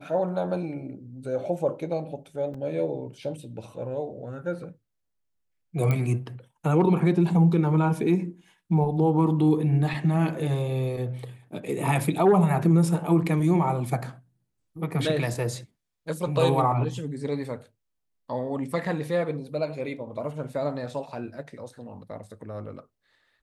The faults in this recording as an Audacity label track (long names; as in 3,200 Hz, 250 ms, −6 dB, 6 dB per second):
2.540000	2.540000	drop-out 4 ms
5.910000	5.910000	click −14 dBFS